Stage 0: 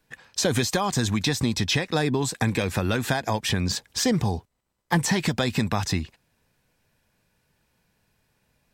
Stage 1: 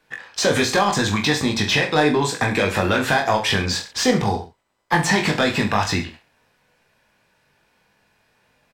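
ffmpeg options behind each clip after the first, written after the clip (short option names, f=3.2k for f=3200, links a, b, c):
-filter_complex "[0:a]asplit=2[a][b];[b]highpass=f=720:p=1,volume=14dB,asoftclip=type=tanh:threshold=-8dB[c];[a][c]amix=inputs=2:normalize=0,lowpass=f=2.3k:p=1,volume=-6dB,aecho=1:1:20|43|69.45|99.87|134.8:0.631|0.398|0.251|0.158|0.1,volume=1.5dB"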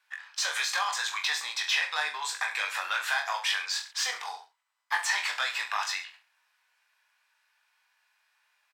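-af "highpass=f=980:w=0.5412,highpass=f=980:w=1.3066,volume=-6.5dB"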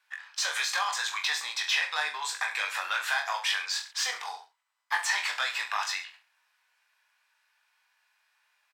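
-af anull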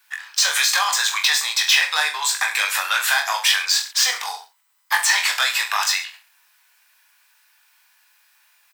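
-filter_complex "[0:a]acrossover=split=1100|6100[a][b][c];[c]alimiter=level_in=9.5dB:limit=-24dB:level=0:latency=1:release=273,volume=-9.5dB[d];[a][b][d]amix=inputs=3:normalize=0,aemphasis=mode=production:type=bsi,volume=8dB"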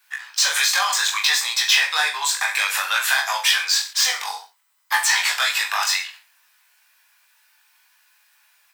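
-af "flanger=delay=15:depth=6.4:speed=0.6,volume=2.5dB"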